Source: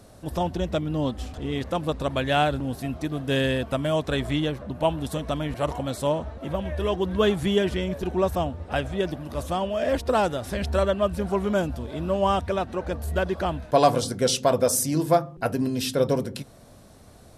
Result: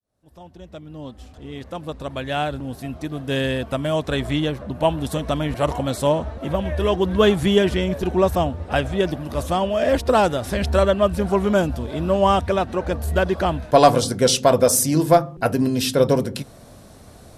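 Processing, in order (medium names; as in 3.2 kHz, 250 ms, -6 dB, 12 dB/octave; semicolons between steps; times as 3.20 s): fade-in on the opening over 5.73 s; Chebyshev shaper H 2 -24 dB, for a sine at -7 dBFS; trim +5.5 dB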